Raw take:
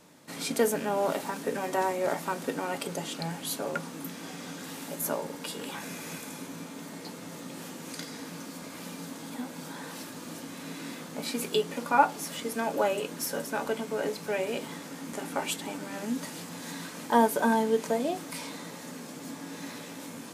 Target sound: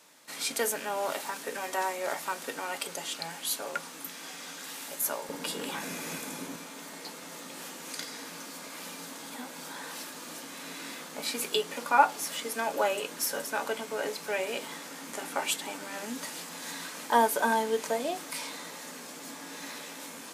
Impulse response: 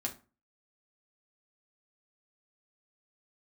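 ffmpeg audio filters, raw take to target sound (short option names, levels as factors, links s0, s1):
-af "asetnsamples=n=441:p=0,asendcmd='5.29 highpass f 220;6.56 highpass f 770',highpass=f=1300:p=1,volume=1.41"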